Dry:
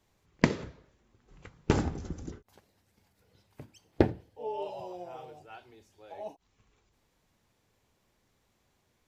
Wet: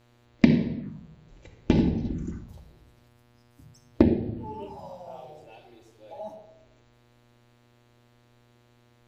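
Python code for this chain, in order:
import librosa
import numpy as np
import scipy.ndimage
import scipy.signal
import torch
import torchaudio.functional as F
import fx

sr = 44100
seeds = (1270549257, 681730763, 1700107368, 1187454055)

y = fx.room_shoebox(x, sr, seeds[0], volume_m3=4000.0, walls='furnished', distance_m=2.5)
y = fx.spec_erase(y, sr, start_s=3.08, length_s=0.86, low_hz=280.0, high_hz=4700.0)
y = fx.small_body(y, sr, hz=(210.0, 3900.0), ring_ms=45, db=9)
y = fx.env_phaser(y, sr, low_hz=170.0, high_hz=1300.0, full_db=-25.5)
y = fx.dmg_buzz(y, sr, base_hz=120.0, harmonics=39, level_db=-63.0, tilt_db=-5, odd_only=False)
y = y * 10.0 ** (1.5 / 20.0)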